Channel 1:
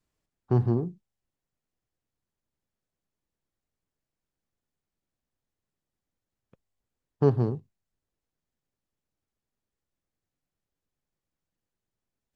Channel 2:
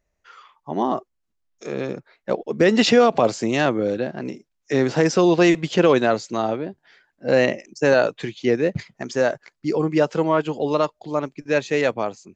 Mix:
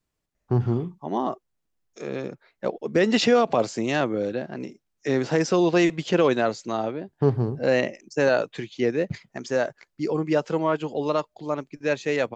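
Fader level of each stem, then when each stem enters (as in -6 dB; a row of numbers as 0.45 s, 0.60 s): +1.0 dB, -4.0 dB; 0.00 s, 0.35 s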